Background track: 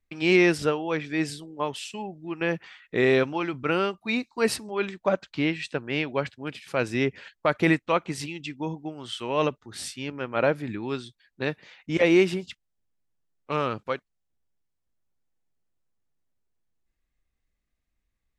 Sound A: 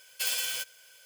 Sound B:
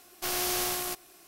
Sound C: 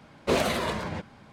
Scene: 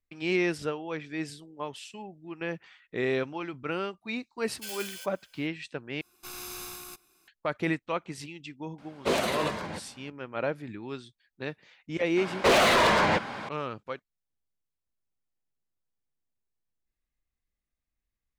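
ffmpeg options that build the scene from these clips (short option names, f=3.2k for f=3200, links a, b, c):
-filter_complex "[3:a]asplit=2[a][b];[0:a]volume=-7.5dB[c];[2:a]aecho=1:1:0.8:0.64[d];[a]lowshelf=f=110:g=-12[e];[b]asplit=2[f][g];[g]highpass=f=720:p=1,volume=28dB,asoftclip=type=tanh:threshold=-11dB[h];[f][h]amix=inputs=2:normalize=0,lowpass=f=3.1k:p=1,volume=-6dB[i];[c]asplit=2[j][k];[j]atrim=end=6.014[l];[d]atrim=end=1.27,asetpts=PTS-STARTPTS,volume=-12dB[m];[k]atrim=start=7.276[n];[1:a]atrim=end=1.05,asetpts=PTS-STARTPTS,volume=-9.5dB,afade=t=in:d=0.004:c=hsin,afade=t=out:st=1.046:d=0.004:c=hsin,adelay=4420[o];[e]atrim=end=1.32,asetpts=PTS-STARTPTS,volume=-1.5dB,afade=t=in:d=0.004:c=hsin,afade=t=out:st=1.316:d=0.004:c=hsin,adelay=8780[p];[i]atrim=end=1.32,asetpts=PTS-STARTPTS,volume=-2dB,afade=t=in:d=0.004:c=hsin,afade=t=out:st=1.316:d=0.004:c=hsin,adelay=12170[q];[l][m]acrossfade=d=0.004:c1=hsin:c2=hsin[r];[r][n]acrossfade=d=0.004:c1=hsin:c2=hsin[s];[s][o][p][q]amix=inputs=4:normalize=0"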